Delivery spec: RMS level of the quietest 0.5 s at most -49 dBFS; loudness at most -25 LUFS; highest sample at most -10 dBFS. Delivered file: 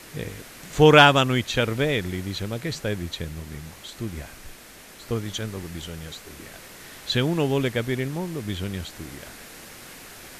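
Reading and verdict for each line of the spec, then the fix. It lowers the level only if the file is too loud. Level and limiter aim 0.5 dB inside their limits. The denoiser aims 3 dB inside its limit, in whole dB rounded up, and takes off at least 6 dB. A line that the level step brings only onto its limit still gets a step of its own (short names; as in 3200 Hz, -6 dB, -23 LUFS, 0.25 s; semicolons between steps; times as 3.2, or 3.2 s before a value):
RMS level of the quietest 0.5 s -46 dBFS: fail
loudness -23.0 LUFS: fail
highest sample -2.0 dBFS: fail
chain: denoiser 6 dB, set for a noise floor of -46 dBFS; gain -2.5 dB; limiter -10.5 dBFS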